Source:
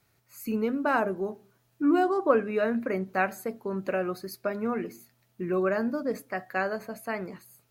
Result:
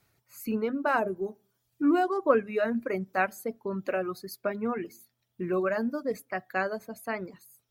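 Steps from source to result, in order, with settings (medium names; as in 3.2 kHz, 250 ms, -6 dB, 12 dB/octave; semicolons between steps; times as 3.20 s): reverb removal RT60 1.1 s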